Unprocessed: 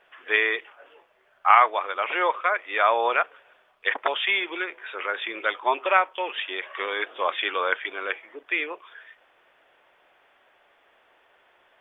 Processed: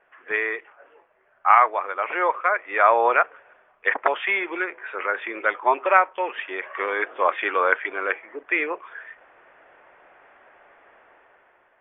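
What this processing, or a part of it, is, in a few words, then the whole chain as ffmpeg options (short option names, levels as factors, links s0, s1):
action camera in a waterproof case: -af "lowpass=f=2200:w=0.5412,lowpass=f=2200:w=1.3066,dynaudnorm=f=260:g=7:m=3.16,volume=0.891" -ar 24000 -c:a aac -b:a 96k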